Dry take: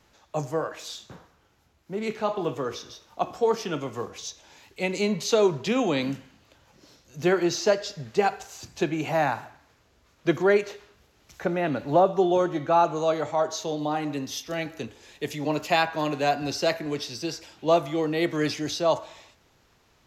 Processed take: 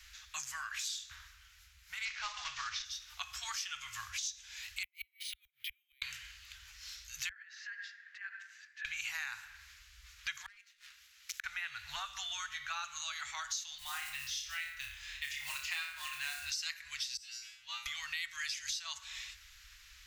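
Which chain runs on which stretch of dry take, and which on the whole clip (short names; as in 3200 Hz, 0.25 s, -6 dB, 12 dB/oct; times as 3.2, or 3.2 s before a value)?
2.05–2.85 CVSD 32 kbps + bell 570 Hz +10.5 dB 2.5 oct
4.83–6.02 vowel filter i + flipped gate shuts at -29 dBFS, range -37 dB + careless resampling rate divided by 3×, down none, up hold
7.29–8.85 compressor 10:1, threshold -29 dBFS + band-pass 1700 Hz, Q 8.9
10.46–11.44 HPF 640 Hz 6 dB/oct + sample leveller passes 2 + flipped gate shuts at -24 dBFS, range -37 dB
13.78–16.5 LPF 2000 Hz 6 dB/oct + flutter echo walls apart 5 m, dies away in 0.4 s + modulation noise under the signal 27 dB
17.17–17.86 high shelf 8300 Hz -4.5 dB + resonator 120 Hz, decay 0.39 s, mix 100%
whole clip: dynamic EQ 7600 Hz, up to +6 dB, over -50 dBFS, Q 1.2; inverse Chebyshev band-stop 210–470 Hz, stop band 80 dB; compressor 5:1, threshold -48 dBFS; gain +9.5 dB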